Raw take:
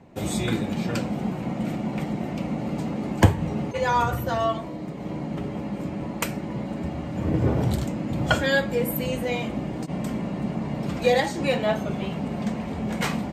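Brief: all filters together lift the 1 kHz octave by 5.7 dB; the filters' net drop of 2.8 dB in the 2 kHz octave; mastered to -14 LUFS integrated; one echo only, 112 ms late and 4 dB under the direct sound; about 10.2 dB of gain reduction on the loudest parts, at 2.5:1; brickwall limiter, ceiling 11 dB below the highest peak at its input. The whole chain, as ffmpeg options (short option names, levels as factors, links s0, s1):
-af "equalizer=f=1000:t=o:g=8.5,equalizer=f=2000:t=o:g=-7.5,acompressor=threshold=0.0562:ratio=2.5,alimiter=limit=0.1:level=0:latency=1,aecho=1:1:112:0.631,volume=5.31"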